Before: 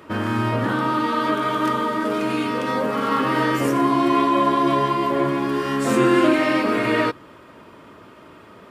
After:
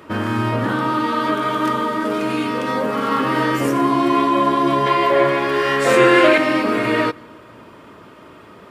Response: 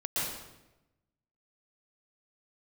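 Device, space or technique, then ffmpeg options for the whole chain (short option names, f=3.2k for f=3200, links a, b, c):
compressed reverb return: -filter_complex "[0:a]asettb=1/sr,asplit=3[a][b][c];[a]atrim=end=4.864[d];[b]atrim=start=4.86:end=6.38,asetpts=PTS-STARTPTS,afade=t=in:d=0.004:c=qsin,afade=t=out:st=1.516:d=0.004:c=qsin,equalizer=f=250:t=o:w=1:g=-10,equalizer=f=500:t=o:w=1:g=10,equalizer=f=2k:t=o:w=1:g=9,equalizer=f=4k:t=o:w=1:g=4[e];[c]atrim=start=6.376[f];[d][e]acrossfade=d=0.004:c1=hsin:c2=qsin[g];[g][f]acrossfade=d=0.004:c1=qsin:c2=hsin,asplit=2[h][i];[1:a]atrim=start_sample=2205[j];[i][j]afir=irnorm=-1:irlink=0,acompressor=threshold=-24dB:ratio=6,volume=-18.5dB[k];[h][k]amix=inputs=2:normalize=0,volume=1.5dB"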